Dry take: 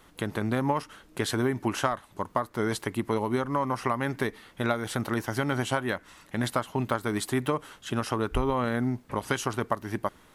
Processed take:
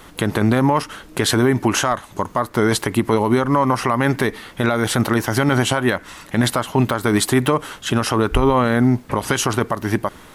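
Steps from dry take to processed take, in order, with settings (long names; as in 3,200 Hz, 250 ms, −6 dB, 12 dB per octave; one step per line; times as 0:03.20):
0:01.74–0:02.38: parametric band 6,500 Hz +6 dB 0.22 octaves
boost into a limiter +19.5 dB
level −5.5 dB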